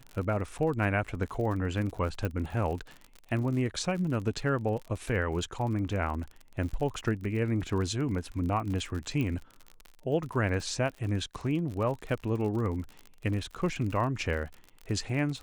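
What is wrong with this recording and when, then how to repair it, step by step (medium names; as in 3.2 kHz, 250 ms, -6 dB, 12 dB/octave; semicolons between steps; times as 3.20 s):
crackle 50 per s -36 dBFS
0.58–0.59 s: dropout 7.4 ms
2.25 s: pop
9.21 s: pop -21 dBFS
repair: de-click; interpolate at 0.58 s, 7.4 ms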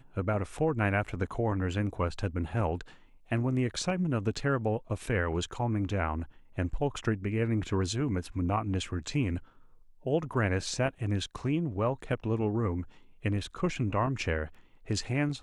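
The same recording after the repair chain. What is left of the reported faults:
nothing left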